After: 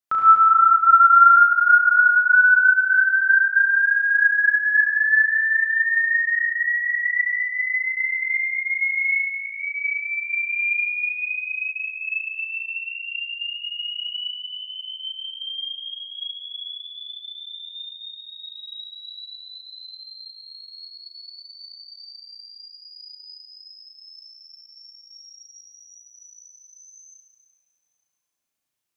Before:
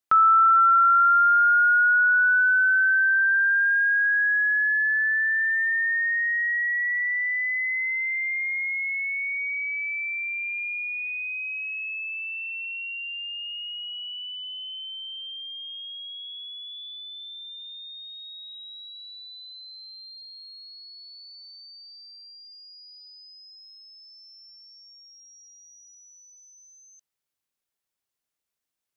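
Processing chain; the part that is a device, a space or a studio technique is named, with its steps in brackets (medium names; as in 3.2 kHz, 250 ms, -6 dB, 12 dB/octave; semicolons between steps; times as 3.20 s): 9.03–9.60 s: ten-band graphic EQ 1 kHz +5 dB, 2 kHz -11 dB, 4 kHz -12 dB; tunnel (flutter echo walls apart 6.1 m, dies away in 0.56 s; reverberation RT60 2.1 s, pre-delay 66 ms, DRR -4 dB); trim -4 dB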